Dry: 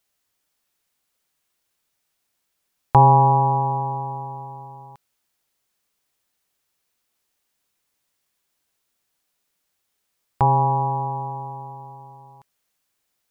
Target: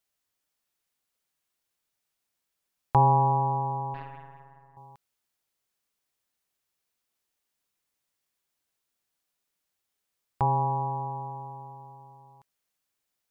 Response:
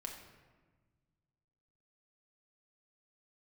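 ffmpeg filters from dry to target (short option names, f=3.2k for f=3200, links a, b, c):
-filter_complex "[0:a]asettb=1/sr,asplit=3[a][b][c];[a]atrim=end=3.944[d];[b]atrim=start=3.94:end=4.77,asetpts=PTS-STARTPTS,afade=t=in:d=0.004:c=qsin,afade=t=out:st=0.826:d=0.004:c=qsin,aeval=exprs='0.126*(cos(1*acos(clip(val(0)/0.126,-1,1)))-cos(1*PI/2))+0.0316*(cos(3*acos(clip(val(0)/0.126,-1,1)))-cos(3*PI/2))+0.00631*(cos(6*acos(clip(val(0)/0.126,-1,1)))-cos(6*PI/2))':c=same[e];[c]atrim=start=4.766[f];[d][e]acrossfade=d=0.004:c1=hsin:c2=qsin[g];[g][f]acrossfade=d=0.004:c1=qsin:c2=hsin,volume=-7.5dB"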